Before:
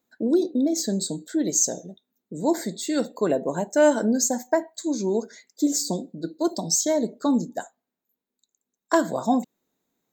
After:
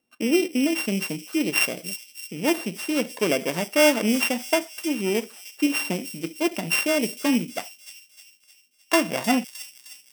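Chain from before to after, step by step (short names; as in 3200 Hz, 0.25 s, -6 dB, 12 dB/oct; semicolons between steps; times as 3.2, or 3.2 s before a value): sample sorter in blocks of 16 samples; thin delay 0.308 s, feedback 52%, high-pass 4700 Hz, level -7 dB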